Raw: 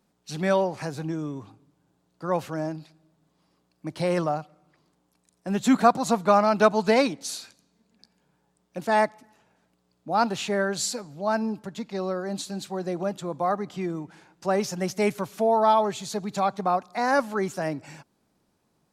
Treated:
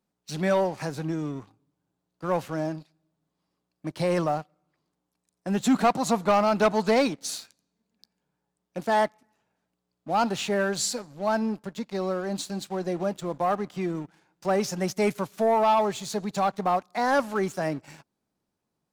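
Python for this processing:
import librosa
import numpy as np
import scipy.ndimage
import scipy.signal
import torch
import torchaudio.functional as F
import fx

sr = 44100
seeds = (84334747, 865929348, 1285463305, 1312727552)

y = fx.leveller(x, sr, passes=2)
y = y * 10.0 ** (-7.0 / 20.0)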